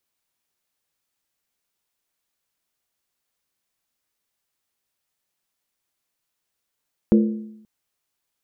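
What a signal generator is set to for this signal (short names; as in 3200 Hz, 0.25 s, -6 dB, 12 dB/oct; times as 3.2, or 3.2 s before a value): skin hit length 0.53 s, lowest mode 216 Hz, decay 0.81 s, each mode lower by 6 dB, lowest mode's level -10 dB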